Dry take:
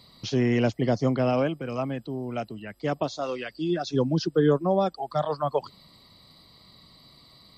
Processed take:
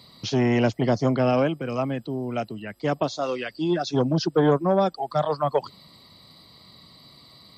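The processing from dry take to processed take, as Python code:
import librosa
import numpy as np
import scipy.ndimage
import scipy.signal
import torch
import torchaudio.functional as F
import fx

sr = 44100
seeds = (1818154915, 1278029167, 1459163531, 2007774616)

y = scipy.signal.sosfilt(scipy.signal.butter(2, 71.0, 'highpass', fs=sr, output='sos'), x)
y = fx.transformer_sat(y, sr, knee_hz=440.0)
y = y * librosa.db_to_amplitude(3.5)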